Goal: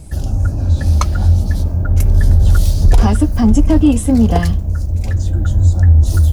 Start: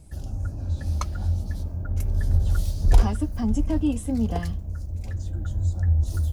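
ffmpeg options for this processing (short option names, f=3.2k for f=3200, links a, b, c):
-filter_complex "[0:a]asplit=2[a][b];[b]volume=24dB,asoftclip=hard,volume=-24dB,volume=-11dB[c];[a][c]amix=inputs=2:normalize=0,alimiter=level_in=13dB:limit=-1dB:release=50:level=0:latency=1,volume=-1dB"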